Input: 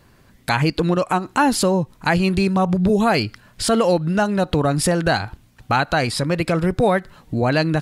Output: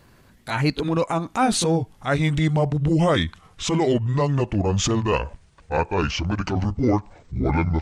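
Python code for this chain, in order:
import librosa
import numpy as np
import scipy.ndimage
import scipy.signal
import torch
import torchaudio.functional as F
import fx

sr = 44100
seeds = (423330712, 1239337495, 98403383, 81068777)

y = fx.pitch_glide(x, sr, semitones=-11.5, runs='starting unshifted')
y = fx.transient(y, sr, attack_db=-7, sustain_db=0)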